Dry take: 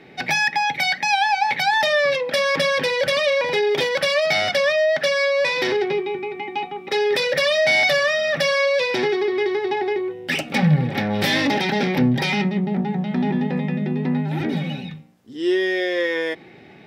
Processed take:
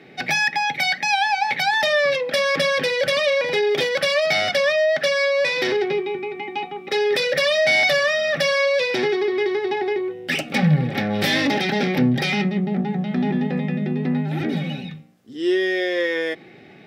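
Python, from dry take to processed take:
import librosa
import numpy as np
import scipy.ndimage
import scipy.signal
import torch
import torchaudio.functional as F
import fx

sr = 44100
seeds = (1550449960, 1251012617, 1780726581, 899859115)

y = scipy.signal.sosfilt(scipy.signal.butter(2, 88.0, 'highpass', fs=sr, output='sos'), x)
y = fx.notch(y, sr, hz=940.0, q=5.7)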